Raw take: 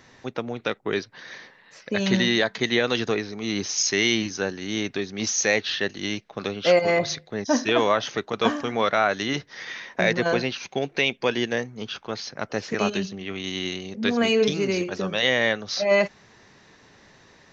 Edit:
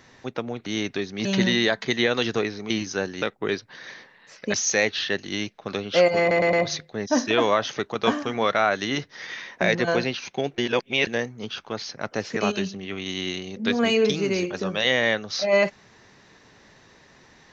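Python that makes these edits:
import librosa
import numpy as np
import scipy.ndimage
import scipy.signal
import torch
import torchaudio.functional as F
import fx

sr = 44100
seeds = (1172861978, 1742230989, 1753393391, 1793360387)

y = fx.edit(x, sr, fx.swap(start_s=0.66, length_s=1.32, other_s=4.66, other_length_s=0.59),
    fx.cut(start_s=3.43, length_s=0.71),
    fx.stutter(start_s=6.91, slice_s=0.11, count=4),
    fx.reverse_span(start_s=10.96, length_s=0.49), tone=tone)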